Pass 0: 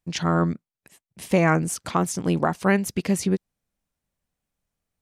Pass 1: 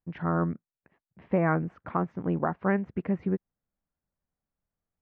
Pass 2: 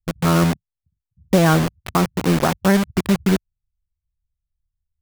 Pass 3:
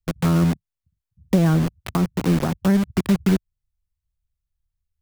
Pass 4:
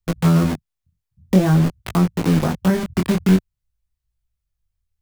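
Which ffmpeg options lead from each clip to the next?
-af "lowpass=f=1.8k:w=0.5412,lowpass=f=1.8k:w=1.3066,volume=-5.5dB"
-filter_complex "[0:a]lowshelf=f=160:g=7,acrossover=split=110[a][b];[b]acrusher=bits=4:mix=0:aa=0.000001[c];[a][c]amix=inputs=2:normalize=0,volume=8dB"
-filter_complex "[0:a]acrossover=split=320[a][b];[b]acompressor=threshold=-27dB:ratio=4[c];[a][c]amix=inputs=2:normalize=0"
-af "flanger=delay=17.5:depth=5.8:speed=0.5,volume=5.5dB"

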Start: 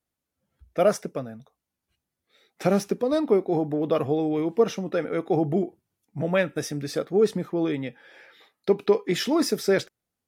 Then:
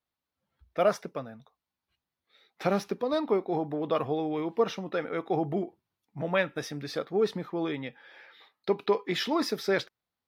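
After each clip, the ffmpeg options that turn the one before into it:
-af "equalizer=f=1k:t=o:w=1:g=8,equalizer=f=2k:t=o:w=1:g=3,equalizer=f=4k:t=o:w=1:g=8,equalizer=f=8k:t=o:w=1:g=-8,volume=-7dB"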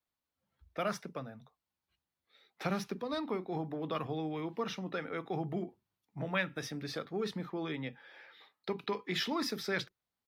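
-filter_complex "[0:a]acrossover=split=260|1000|4200[a][b][c][d];[a]asplit=2[e][f];[f]adelay=38,volume=-4.5dB[g];[e][g]amix=inputs=2:normalize=0[h];[b]acompressor=threshold=-37dB:ratio=6[i];[h][i][c][d]amix=inputs=4:normalize=0,volume=-3dB"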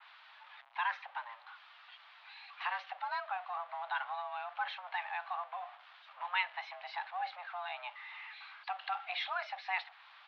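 -af "aeval=exprs='val(0)+0.5*0.00596*sgn(val(0))':c=same,highpass=f=420:t=q:w=0.5412,highpass=f=420:t=q:w=1.307,lowpass=f=3.4k:t=q:w=0.5176,lowpass=f=3.4k:t=q:w=0.7071,lowpass=f=3.4k:t=q:w=1.932,afreqshift=360,adynamicequalizer=threshold=0.00355:dfrequency=2800:dqfactor=0.7:tfrequency=2800:tqfactor=0.7:attack=5:release=100:ratio=0.375:range=2:mode=cutabove:tftype=highshelf"

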